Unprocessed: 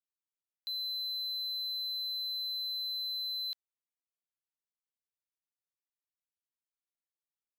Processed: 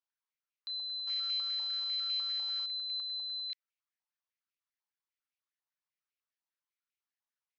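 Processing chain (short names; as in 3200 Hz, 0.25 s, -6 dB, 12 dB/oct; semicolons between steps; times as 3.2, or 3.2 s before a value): 1.07–2.66 half-waves squared off; steep low-pass 6300 Hz 96 dB/oct; stepped high-pass 10 Hz 870–2400 Hz; gain -3 dB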